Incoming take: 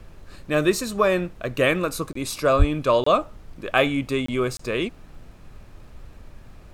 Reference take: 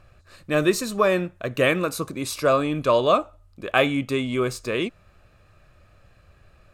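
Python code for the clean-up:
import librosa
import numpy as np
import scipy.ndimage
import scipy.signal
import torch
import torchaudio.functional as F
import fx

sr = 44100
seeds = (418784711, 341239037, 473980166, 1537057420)

y = fx.fix_declick_ar(x, sr, threshold=6.5)
y = fx.highpass(y, sr, hz=140.0, slope=24, at=(2.58, 2.7), fade=0.02)
y = fx.fix_interpolate(y, sr, at_s=(2.13, 3.04, 4.26, 4.57), length_ms=24.0)
y = fx.noise_reduce(y, sr, print_start_s=5.23, print_end_s=5.73, reduce_db=10.0)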